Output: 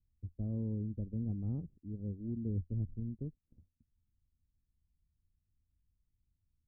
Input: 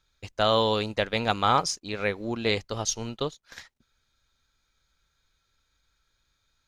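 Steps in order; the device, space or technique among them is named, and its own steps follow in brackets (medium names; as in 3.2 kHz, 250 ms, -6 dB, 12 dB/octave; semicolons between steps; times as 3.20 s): 2.55–3.00 s: bass shelf 480 Hz +4 dB; the neighbour's flat through the wall (low-pass 260 Hz 24 dB/octave; peaking EQ 85 Hz +7 dB 0.51 oct); trim -4 dB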